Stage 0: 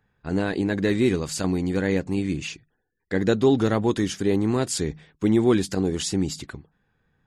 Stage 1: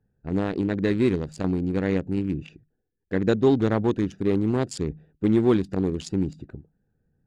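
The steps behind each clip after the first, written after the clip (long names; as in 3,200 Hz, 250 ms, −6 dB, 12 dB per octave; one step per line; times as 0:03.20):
adaptive Wiener filter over 41 samples
high-shelf EQ 7,500 Hz −11.5 dB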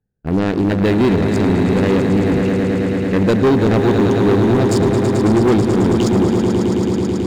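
echo that builds up and dies away 109 ms, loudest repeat 5, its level −10 dB
leveller curve on the samples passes 3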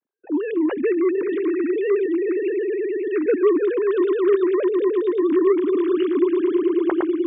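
three sine waves on the formant tracks
level −5.5 dB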